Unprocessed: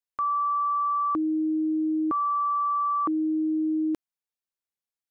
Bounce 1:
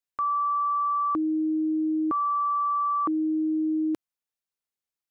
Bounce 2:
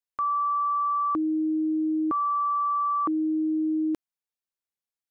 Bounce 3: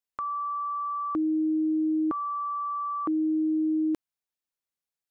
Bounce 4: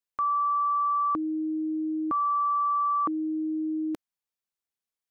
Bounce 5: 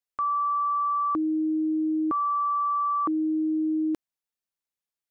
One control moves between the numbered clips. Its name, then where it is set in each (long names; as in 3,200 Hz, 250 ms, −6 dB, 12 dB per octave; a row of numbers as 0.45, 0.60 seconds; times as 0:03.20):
dynamic equaliser, frequency: 110, 7,900, 1,100, 370, 2,800 Hertz